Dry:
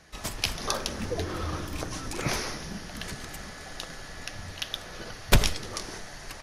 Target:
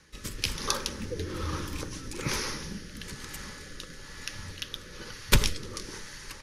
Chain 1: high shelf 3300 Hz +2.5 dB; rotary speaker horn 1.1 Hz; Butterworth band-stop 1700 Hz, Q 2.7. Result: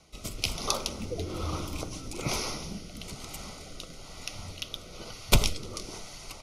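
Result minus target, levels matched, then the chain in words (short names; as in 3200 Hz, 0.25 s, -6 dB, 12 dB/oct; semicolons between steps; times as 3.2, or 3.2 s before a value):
2000 Hz band -3.0 dB
high shelf 3300 Hz +2.5 dB; rotary speaker horn 1.1 Hz; Butterworth band-stop 690 Hz, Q 2.7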